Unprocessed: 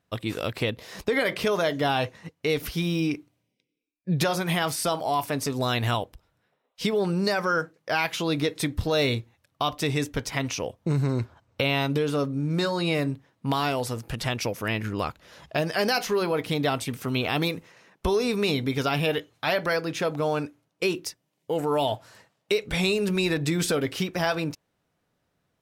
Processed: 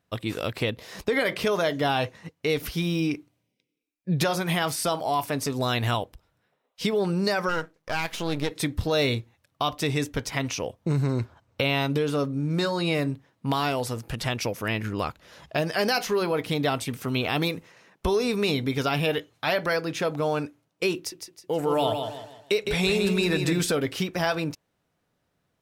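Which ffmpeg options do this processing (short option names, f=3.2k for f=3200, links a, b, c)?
-filter_complex "[0:a]asplit=3[a][b][c];[a]afade=t=out:st=7.48:d=0.02[d];[b]aeval=exprs='if(lt(val(0),0),0.251*val(0),val(0))':c=same,afade=t=in:st=7.48:d=0.02,afade=t=out:st=8.5:d=0.02[e];[c]afade=t=in:st=8.5:d=0.02[f];[d][e][f]amix=inputs=3:normalize=0,asettb=1/sr,asplit=3[g][h][i];[g]atrim=end=20.964[j];[h]atrim=start=20.96:end=23.61,asetpts=PTS-STARTPTS,afade=t=in:d=0.004:c=qsin,afade=t=out:st=2.646:d=0.004:c=qsin,aecho=1:1:159|318|477|636:0.501|0.185|0.0686|0.0254,atrim=end_sample=116865[k];[i]atrim=start=23.606[l];[j][k]acrossfade=d=0.004:c1=hsin:c2=qsin[m];[m][l]acrossfade=d=0.004:c1=qsin:c2=hsin"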